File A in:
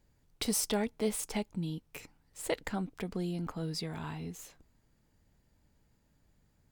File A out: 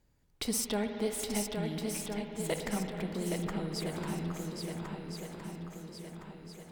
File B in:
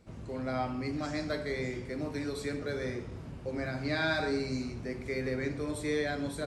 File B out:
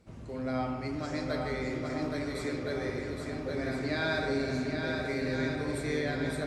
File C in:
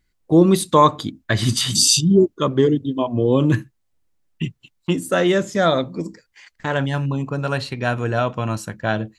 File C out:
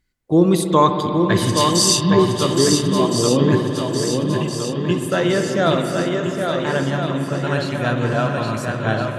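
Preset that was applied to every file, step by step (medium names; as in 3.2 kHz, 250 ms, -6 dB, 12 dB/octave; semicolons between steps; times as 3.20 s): Chebyshev shaper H 3 -37 dB, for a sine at -1 dBFS; shuffle delay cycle 1364 ms, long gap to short 1.5:1, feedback 45%, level -5 dB; spring tank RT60 4 s, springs 54/58 ms, chirp 70 ms, DRR 5 dB; trim -1 dB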